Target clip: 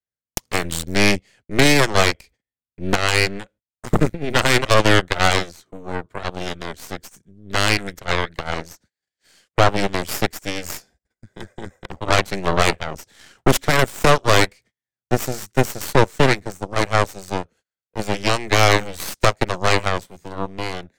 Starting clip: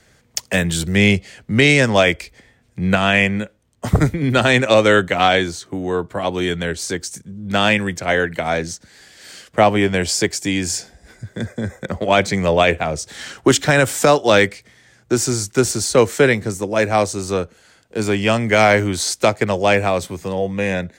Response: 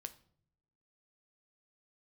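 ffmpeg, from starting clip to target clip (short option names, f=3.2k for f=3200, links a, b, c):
-af "agate=range=-29dB:threshold=-41dB:ratio=16:detection=peak,aeval=exprs='0.841*(cos(1*acos(clip(val(0)/0.841,-1,1)))-cos(1*PI/2))+0.133*(cos(3*acos(clip(val(0)/0.841,-1,1)))-cos(3*PI/2))+0.335*(cos(4*acos(clip(val(0)/0.841,-1,1)))-cos(4*PI/2))+0.0531*(cos(5*acos(clip(val(0)/0.841,-1,1)))-cos(5*PI/2))+0.075*(cos(7*acos(clip(val(0)/0.841,-1,1)))-cos(7*PI/2))':c=same,volume=-3dB"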